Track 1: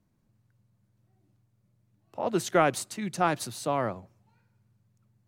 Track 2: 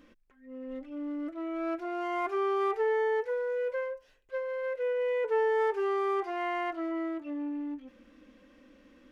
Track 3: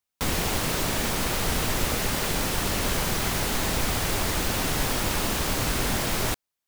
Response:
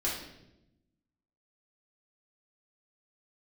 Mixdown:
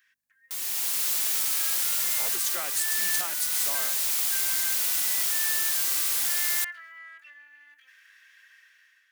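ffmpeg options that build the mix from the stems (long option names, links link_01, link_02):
-filter_complex "[0:a]volume=-3dB[link_01];[1:a]alimiter=level_in=6dB:limit=-24dB:level=0:latency=1,volume=-6dB,acompressor=threshold=-39dB:ratio=5,highpass=frequency=1700:width_type=q:width=9.1,volume=1dB[link_02];[2:a]adelay=300,volume=-8dB[link_03];[link_01][link_03]amix=inputs=2:normalize=0,aeval=exprs='val(0)+0.000631*(sin(2*PI*50*n/s)+sin(2*PI*2*50*n/s)/2+sin(2*PI*3*50*n/s)/3+sin(2*PI*4*50*n/s)/4+sin(2*PI*5*50*n/s)/5)':channel_layout=same,alimiter=limit=-18.5dB:level=0:latency=1:release=405,volume=0dB[link_04];[link_02][link_04]amix=inputs=2:normalize=0,dynaudnorm=framelen=280:gausssize=5:maxgain=11.5dB,aderivative"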